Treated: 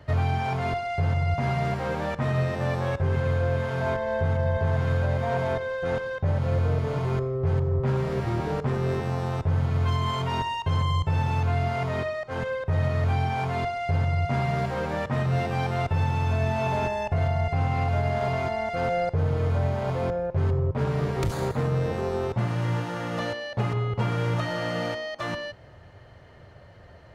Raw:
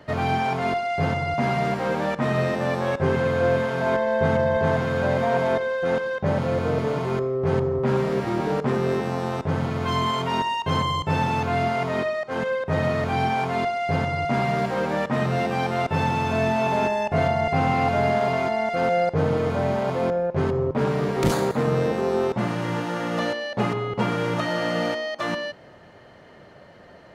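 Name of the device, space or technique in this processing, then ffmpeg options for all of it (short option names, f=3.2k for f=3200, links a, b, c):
car stereo with a boomy subwoofer: -af "lowshelf=f=140:t=q:w=1.5:g=11.5,alimiter=limit=-12dB:level=0:latency=1:release=160,volume=-4dB"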